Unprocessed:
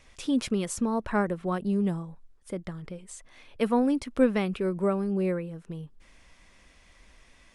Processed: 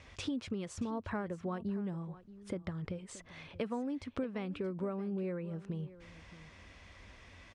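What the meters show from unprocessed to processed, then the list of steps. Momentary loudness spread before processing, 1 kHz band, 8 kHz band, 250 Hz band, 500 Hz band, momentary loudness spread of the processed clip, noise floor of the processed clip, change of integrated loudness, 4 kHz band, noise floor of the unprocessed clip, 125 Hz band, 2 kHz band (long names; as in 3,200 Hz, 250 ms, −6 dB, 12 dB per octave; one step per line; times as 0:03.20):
17 LU, −11.5 dB, −12.0 dB, −10.5 dB, −11.0 dB, 17 LU, −58 dBFS, −11.5 dB, −7.5 dB, −59 dBFS, −7.0 dB, −10.0 dB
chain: high-pass filter 49 Hz
parametric band 93 Hz +14 dB 0.32 octaves
downward compressor 6 to 1, threshold −39 dBFS, peak gain reduction 21 dB
high-frequency loss of the air 95 metres
on a send: single-tap delay 627 ms −17 dB
on the sum: level +3.5 dB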